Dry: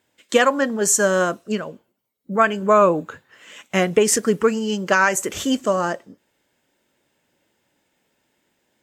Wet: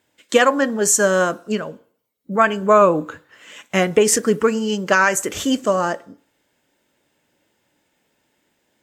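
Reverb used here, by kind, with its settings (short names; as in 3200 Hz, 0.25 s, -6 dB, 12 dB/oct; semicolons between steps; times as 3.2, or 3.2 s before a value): FDN reverb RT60 0.51 s, low-frequency decay 0.75×, high-frequency decay 0.35×, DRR 16.5 dB; gain +1.5 dB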